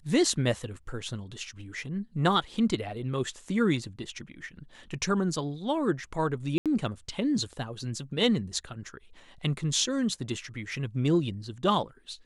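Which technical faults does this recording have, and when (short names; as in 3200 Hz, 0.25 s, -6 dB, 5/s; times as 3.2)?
6.58–6.66 gap 77 ms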